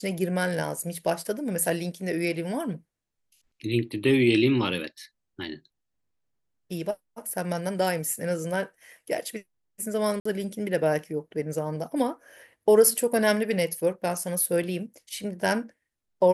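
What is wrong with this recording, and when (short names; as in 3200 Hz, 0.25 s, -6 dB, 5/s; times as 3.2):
10.2–10.25 gap 54 ms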